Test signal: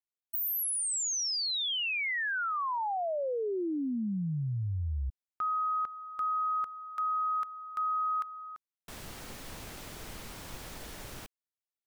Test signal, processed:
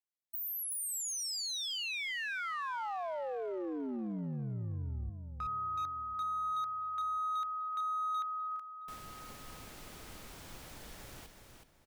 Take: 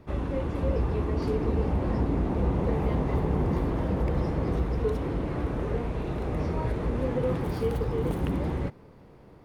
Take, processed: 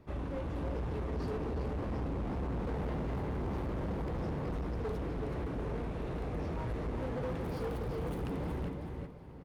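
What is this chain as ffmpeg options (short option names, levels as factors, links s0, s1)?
-filter_complex "[0:a]asplit=2[s0][s1];[s1]aecho=0:1:373|746|1119:0.473|0.114|0.0273[s2];[s0][s2]amix=inputs=2:normalize=0,asoftclip=type=hard:threshold=0.0473,asplit=2[s3][s4];[s4]adelay=1042,lowpass=f=1300:p=1,volume=0.126,asplit=2[s5][s6];[s6]adelay=1042,lowpass=f=1300:p=1,volume=0.25[s7];[s5][s7]amix=inputs=2:normalize=0[s8];[s3][s8]amix=inputs=2:normalize=0,volume=0.473"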